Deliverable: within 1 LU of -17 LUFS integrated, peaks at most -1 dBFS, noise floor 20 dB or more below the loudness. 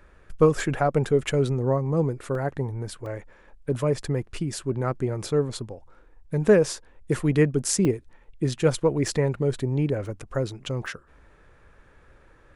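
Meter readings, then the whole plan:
dropouts 6; longest dropout 1.9 ms; loudness -25.0 LUFS; peak level -6.5 dBFS; loudness target -17.0 LUFS
-> interpolate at 2.35/3.06/7.85/9.08/10.06/10.86 s, 1.9 ms; trim +8 dB; peak limiter -1 dBFS

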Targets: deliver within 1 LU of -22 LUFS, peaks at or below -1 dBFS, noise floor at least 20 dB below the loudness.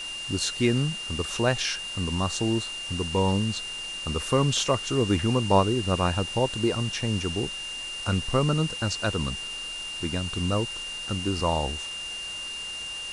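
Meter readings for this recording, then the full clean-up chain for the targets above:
steady tone 2.8 kHz; tone level -33 dBFS; noise floor -35 dBFS; noise floor target -47 dBFS; loudness -27.0 LUFS; peak level -7.5 dBFS; loudness target -22.0 LUFS
-> band-stop 2.8 kHz, Q 30; noise reduction 12 dB, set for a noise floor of -35 dBFS; trim +5 dB

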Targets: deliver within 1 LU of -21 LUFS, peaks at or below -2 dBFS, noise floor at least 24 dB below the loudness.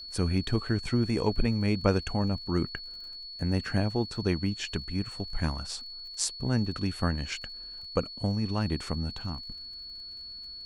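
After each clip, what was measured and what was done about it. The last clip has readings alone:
tick rate 36 per s; steady tone 4.4 kHz; tone level -40 dBFS; loudness -31.0 LUFS; peak level -9.5 dBFS; loudness target -21.0 LUFS
-> de-click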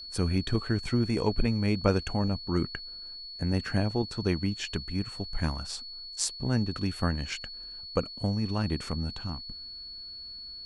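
tick rate 0.19 per s; steady tone 4.4 kHz; tone level -40 dBFS
-> band-stop 4.4 kHz, Q 30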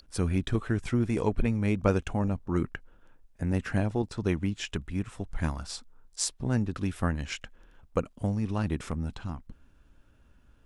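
steady tone not found; loudness -31.0 LUFS; peak level -10.0 dBFS; loudness target -21.0 LUFS
-> trim +10 dB; peak limiter -2 dBFS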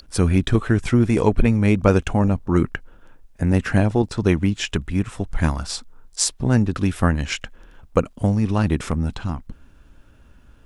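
loudness -21.0 LUFS; peak level -2.0 dBFS; noise floor -51 dBFS

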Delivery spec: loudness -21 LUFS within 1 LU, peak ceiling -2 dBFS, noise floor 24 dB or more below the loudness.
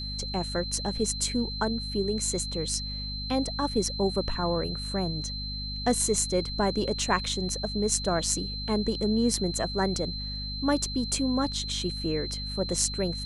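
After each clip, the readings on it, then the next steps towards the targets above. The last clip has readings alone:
hum 50 Hz; highest harmonic 250 Hz; hum level -34 dBFS; steady tone 4.1 kHz; tone level -35 dBFS; loudness -28.0 LUFS; peak level -7.5 dBFS; loudness target -21.0 LUFS
-> hum notches 50/100/150/200/250 Hz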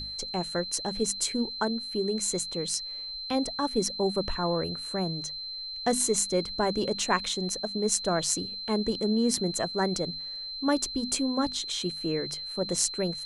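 hum not found; steady tone 4.1 kHz; tone level -35 dBFS
-> band-stop 4.1 kHz, Q 30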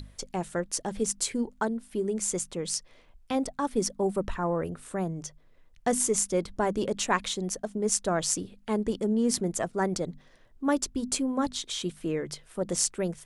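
steady tone not found; loudness -29.5 LUFS; peak level -7.0 dBFS; loudness target -21.0 LUFS
-> trim +8.5 dB; peak limiter -2 dBFS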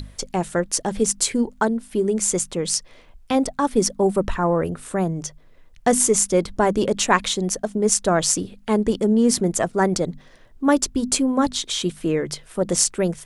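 loudness -21.0 LUFS; peak level -2.0 dBFS; noise floor -50 dBFS

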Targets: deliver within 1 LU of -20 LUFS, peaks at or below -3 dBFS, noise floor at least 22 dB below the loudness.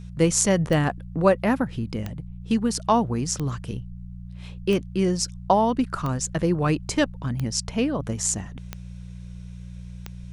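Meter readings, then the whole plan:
clicks found 8; hum 60 Hz; highest harmonic 180 Hz; hum level -35 dBFS; loudness -24.0 LUFS; peak level -3.0 dBFS; loudness target -20.0 LUFS
-> de-click; de-hum 60 Hz, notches 3; trim +4 dB; peak limiter -3 dBFS

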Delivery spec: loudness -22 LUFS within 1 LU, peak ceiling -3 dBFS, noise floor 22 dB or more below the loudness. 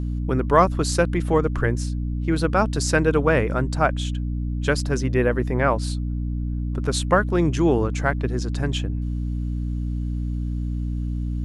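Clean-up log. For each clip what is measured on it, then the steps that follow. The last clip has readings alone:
hum 60 Hz; highest harmonic 300 Hz; hum level -23 dBFS; loudness -23.0 LUFS; peak level -3.0 dBFS; loudness target -22.0 LUFS
-> hum notches 60/120/180/240/300 Hz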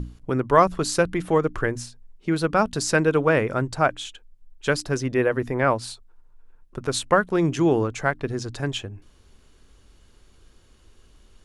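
hum not found; loudness -23.0 LUFS; peak level -3.0 dBFS; loudness target -22.0 LUFS
-> trim +1 dB; peak limiter -3 dBFS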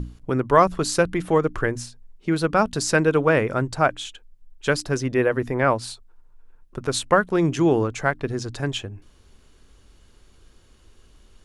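loudness -22.0 LUFS; peak level -3.0 dBFS; noise floor -55 dBFS

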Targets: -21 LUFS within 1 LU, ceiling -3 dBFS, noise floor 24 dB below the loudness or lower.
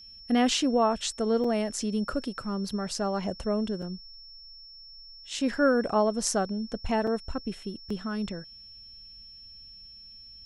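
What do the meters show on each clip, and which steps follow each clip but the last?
dropouts 5; longest dropout 4.1 ms; steady tone 5.4 kHz; tone level -46 dBFS; loudness -28.5 LUFS; peak level -8.5 dBFS; loudness target -21.0 LUFS
-> interpolate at 1.44/2.69/3.82/7.07/7.90 s, 4.1 ms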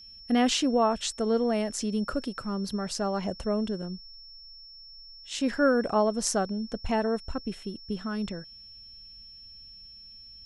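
dropouts 0; steady tone 5.4 kHz; tone level -46 dBFS
-> band-stop 5.4 kHz, Q 30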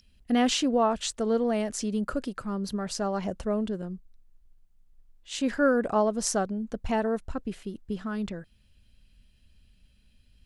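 steady tone not found; loudness -28.5 LUFS; peak level -9.0 dBFS; loudness target -21.0 LUFS
-> trim +7.5 dB; peak limiter -3 dBFS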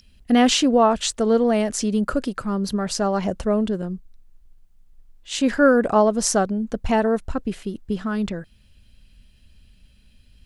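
loudness -21.0 LUFS; peak level -3.0 dBFS; noise floor -54 dBFS

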